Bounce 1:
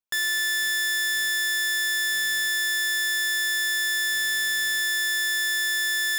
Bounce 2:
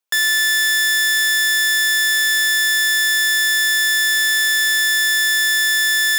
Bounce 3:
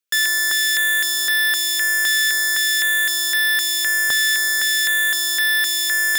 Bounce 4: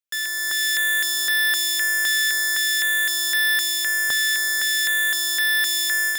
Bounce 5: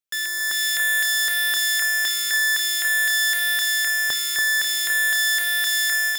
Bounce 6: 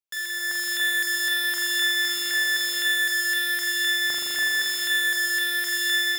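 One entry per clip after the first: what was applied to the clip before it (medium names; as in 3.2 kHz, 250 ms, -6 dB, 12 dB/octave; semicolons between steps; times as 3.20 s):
Bessel high-pass 350 Hz, order 8; trim +8.5 dB
step-sequenced notch 3.9 Hz 840–7000 Hz
level rider; trim -8.5 dB
echo whose repeats swap between lows and highs 284 ms, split 2 kHz, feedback 59%, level -4.5 dB
spring tank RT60 3.7 s, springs 40 ms, chirp 65 ms, DRR -5 dB; trim -6 dB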